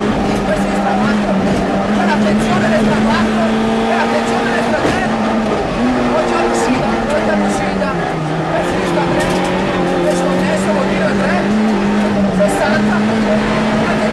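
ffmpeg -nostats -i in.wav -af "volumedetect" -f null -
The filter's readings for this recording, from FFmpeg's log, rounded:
mean_volume: -13.8 dB
max_volume: -3.2 dB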